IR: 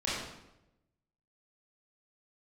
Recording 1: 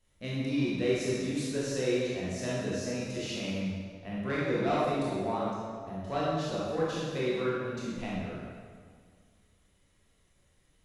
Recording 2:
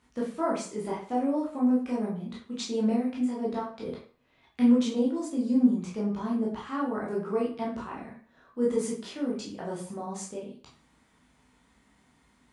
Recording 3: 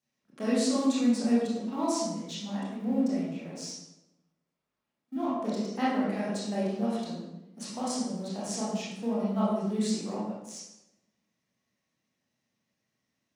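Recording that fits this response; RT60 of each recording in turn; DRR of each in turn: 3; 2.0, 0.45, 0.90 s; -7.5, -5.0, -9.0 dB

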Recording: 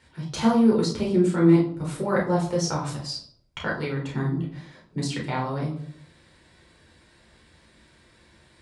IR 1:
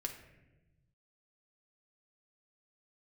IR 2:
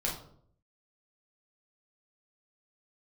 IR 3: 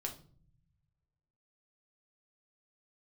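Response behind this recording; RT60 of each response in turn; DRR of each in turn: 2; 1.0, 0.60, 0.45 s; 2.5, -4.5, 1.0 dB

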